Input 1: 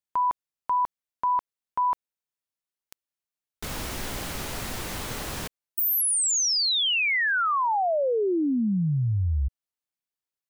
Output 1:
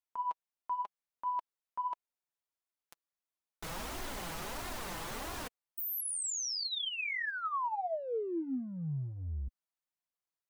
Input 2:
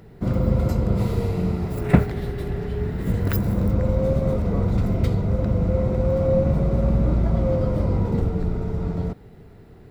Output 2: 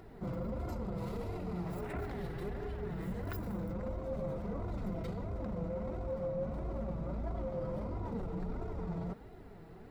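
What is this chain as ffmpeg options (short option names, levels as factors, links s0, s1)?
-af "acontrast=29,equalizer=f=920:w=0.82:g=6,areverse,acompressor=threshold=0.0631:ratio=5:attack=0.94:release=24:knee=6:detection=rms,areverse,flanger=delay=2.8:depth=3.4:regen=19:speed=1.5:shape=sinusoidal,volume=0.398"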